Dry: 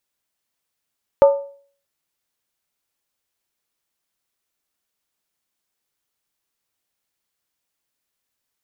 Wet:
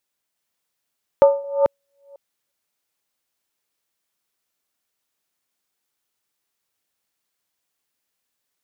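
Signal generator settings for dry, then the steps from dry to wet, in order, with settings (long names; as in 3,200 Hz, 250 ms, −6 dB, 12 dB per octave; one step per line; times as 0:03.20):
struck skin, lowest mode 560 Hz, decay 0.48 s, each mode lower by 10.5 dB, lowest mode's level −4.5 dB
delay that plays each chunk backwards 360 ms, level −4.5 dB
low-shelf EQ 89 Hz −7 dB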